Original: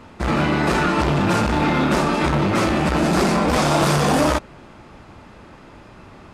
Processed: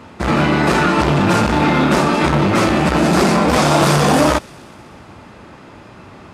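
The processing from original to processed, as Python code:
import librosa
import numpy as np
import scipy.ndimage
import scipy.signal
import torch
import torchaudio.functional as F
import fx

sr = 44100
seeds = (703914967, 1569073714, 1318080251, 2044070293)

y = scipy.signal.sosfilt(scipy.signal.butter(2, 68.0, 'highpass', fs=sr, output='sos'), x)
y = fx.echo_wet_highpass(y, sr, ms=124, feedback_pct=70, hz=2700.0, wet_db=-22.5)
y = y * 10.0 ** (4.5 / 20.0)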